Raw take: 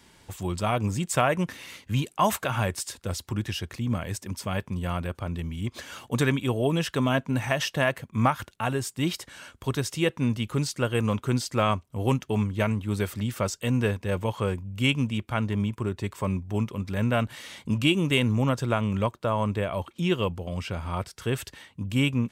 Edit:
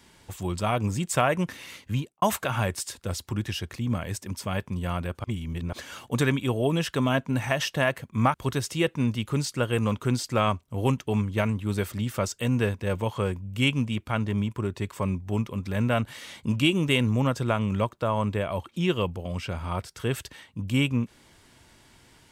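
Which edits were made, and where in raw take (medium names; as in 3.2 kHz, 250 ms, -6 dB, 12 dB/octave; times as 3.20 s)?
1.87–2.22 s: studio fade out
5.24–5.73 s: reverse
8.34–9.56 s: delete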